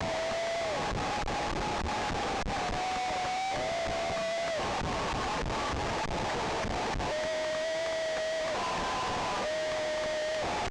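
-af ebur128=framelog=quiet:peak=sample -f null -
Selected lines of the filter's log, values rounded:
Integrated loudness:
  I:         -31.9 LUFS
  Threshold: -41.9 LUFS
Loudness range:
  LRA:         0.4 LU
  Threshold: -51.9 LUFS
  LRA low:   -32.1 LUFS
  LRA high:  -31.7 LUFS
Sample peak:
  Peak:      -25.3 dBFS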